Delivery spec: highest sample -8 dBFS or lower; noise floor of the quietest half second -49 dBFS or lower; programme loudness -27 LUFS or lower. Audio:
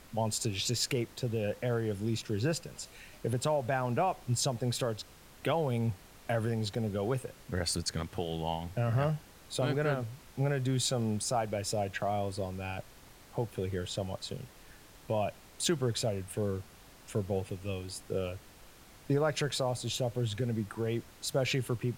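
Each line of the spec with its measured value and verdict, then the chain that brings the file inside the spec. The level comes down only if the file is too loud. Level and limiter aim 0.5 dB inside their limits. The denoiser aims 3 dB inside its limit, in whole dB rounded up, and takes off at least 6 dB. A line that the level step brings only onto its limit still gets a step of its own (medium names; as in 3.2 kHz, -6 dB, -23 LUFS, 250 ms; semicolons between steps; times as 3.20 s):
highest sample -16.5 dBFS: pass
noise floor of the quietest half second -55 dBFS: pass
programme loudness -33.5 LUFS: pass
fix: none needed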